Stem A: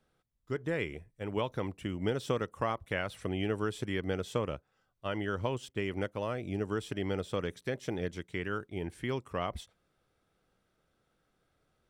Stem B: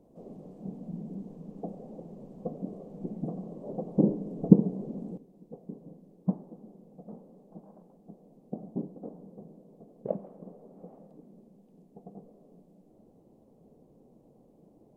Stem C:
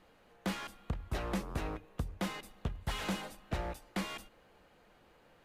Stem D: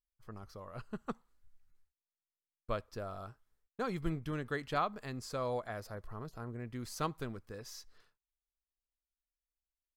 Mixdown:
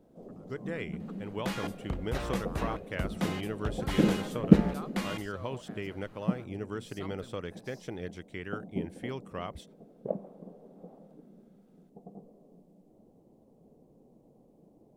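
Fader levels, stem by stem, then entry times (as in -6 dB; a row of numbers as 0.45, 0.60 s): -4.0, -1.0, +2.0, -11.5 dB; 0.00, 0.00, 1.00, 0.00 s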